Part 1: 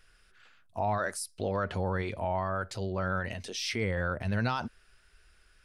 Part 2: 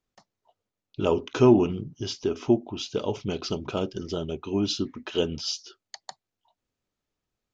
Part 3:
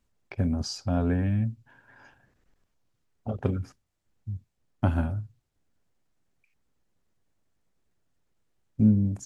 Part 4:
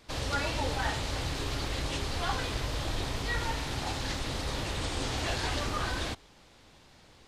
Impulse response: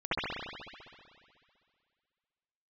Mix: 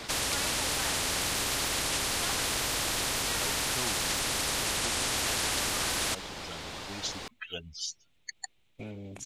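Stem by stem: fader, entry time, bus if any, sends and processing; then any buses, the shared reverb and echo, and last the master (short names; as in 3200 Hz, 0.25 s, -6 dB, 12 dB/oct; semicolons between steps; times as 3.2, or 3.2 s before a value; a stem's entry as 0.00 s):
off
-8.0 dB, 2.35 s, no send, per-bin expansion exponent 3
-17.0 dB, 0.00 s, no send, band shelf 2900 Hz +12.5 dB 1.1 oct
-2.0 dB, 0.00 s, no send, dry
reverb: off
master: spectral compressor 4:1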